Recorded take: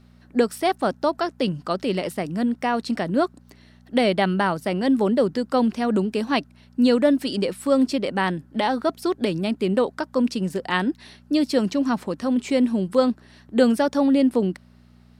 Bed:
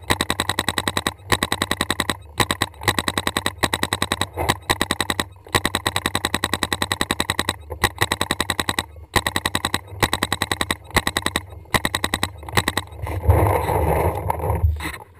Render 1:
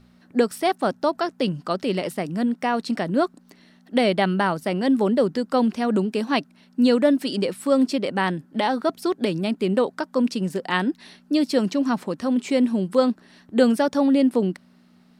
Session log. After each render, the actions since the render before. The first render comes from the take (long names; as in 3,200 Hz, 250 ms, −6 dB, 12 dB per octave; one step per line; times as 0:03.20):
hum removal 60 Hz, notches 2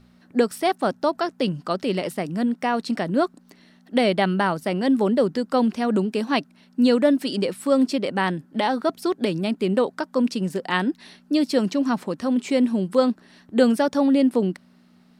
no processing that can be heard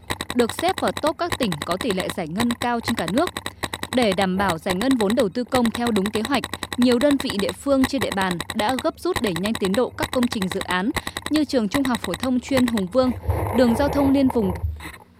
mix in bed −7.5 dB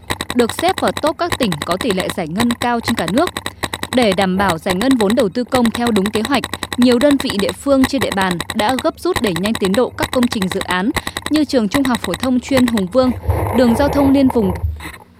level +6 dB
brickwall limiter −2 dBFS, peak gain reduction 2.5 dB